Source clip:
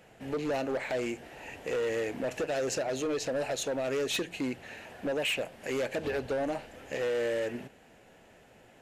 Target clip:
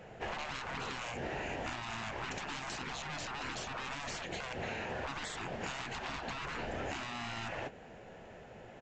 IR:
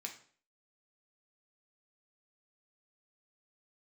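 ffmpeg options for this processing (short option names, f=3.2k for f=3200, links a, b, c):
-af "aresample=16000,asoftclip=type=hard:threshold=-34.5dB,aresample=44100,equalizer=f=280:t=o:w=0.45:g=-5.5,afftfilt=real='re*lt(hypot(re,im),0.02)':imag='im*lt(hypot(re,im),0.02)':win_size=1024:overlap=0.75,agate=range=-10dB:threshold=-52dB:ratio=16:detection=peak,acompressor=threshold=-51dB:ratio=6,highshelf=f=2.2k:g=-10,volume=17.5dB"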